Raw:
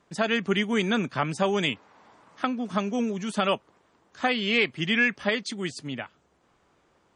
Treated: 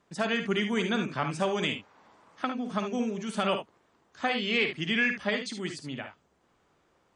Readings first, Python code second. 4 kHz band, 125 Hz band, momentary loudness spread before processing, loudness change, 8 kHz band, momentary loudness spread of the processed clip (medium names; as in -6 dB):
-3.0 dB, -3.5 dB, 10 LU, -3.5 dB, -3.0 dB, 10 LU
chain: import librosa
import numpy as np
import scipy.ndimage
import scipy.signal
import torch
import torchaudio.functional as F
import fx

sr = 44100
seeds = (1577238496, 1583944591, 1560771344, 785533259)

y = fx.room_early_taps(x, sr, ms=(53, 73), db=(-9.0, -10.0))
y = y * librosa.db_to_amplitude(-4.0)